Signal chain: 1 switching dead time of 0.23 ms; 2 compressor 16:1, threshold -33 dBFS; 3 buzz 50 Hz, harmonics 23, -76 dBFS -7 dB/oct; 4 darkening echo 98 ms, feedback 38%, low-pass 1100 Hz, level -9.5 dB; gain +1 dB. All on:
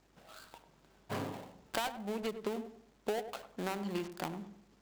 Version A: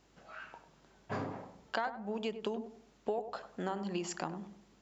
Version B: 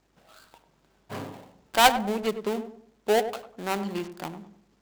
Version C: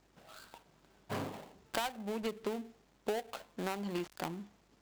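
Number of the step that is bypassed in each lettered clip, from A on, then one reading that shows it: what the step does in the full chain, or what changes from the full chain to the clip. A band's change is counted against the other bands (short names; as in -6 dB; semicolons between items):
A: 1, distortion -4 dB; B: 2, mean gain reduction 7.0 dB; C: 4, echo-to-direct -13.0 dB to none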